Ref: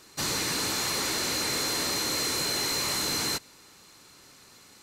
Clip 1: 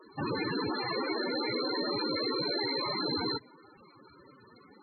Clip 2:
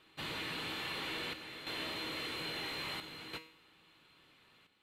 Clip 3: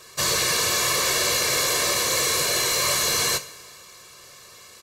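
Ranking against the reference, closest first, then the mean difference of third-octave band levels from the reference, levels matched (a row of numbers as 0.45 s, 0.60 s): 3, 2, 1; 3.0 dB, 5.5 dB, 15.0 dB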